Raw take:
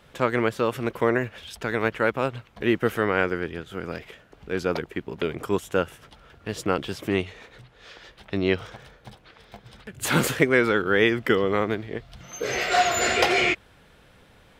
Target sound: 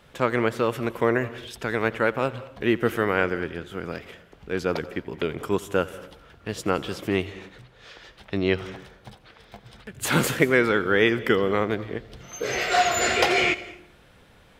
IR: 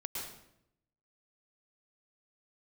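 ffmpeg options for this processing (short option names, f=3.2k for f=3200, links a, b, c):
-filter_complex "[0:a]asplit=2[a][b];[b]equalizer=f=12k:w=3.8:g=7.5[c];[1:a]atrim=start_sample=2205,asetrate=61740,aresample=44100,adelay=87[d];[c][d]afir=irnorm=-1:irlink=0,volume=-14dB[e];[a][e]amix=inputs=2:normalize=0"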